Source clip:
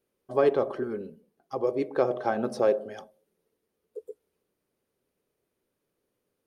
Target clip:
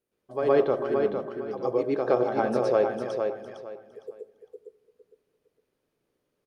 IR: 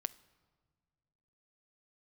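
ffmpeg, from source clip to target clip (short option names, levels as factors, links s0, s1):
-filter_complex "[0:a]aecho=1:1:458|916|1374:0.531|0.133|0.0332,asplit=2[s0][s1];[1:a]atrim=start_sample=2205,lowpass=6100,adelay=116[s2];[s1][s2]afir=irnorm=-1:irlink=0,volume=2.37[s3];[s0][s3]amix=inputs=2:normalize=0,volume=0.501"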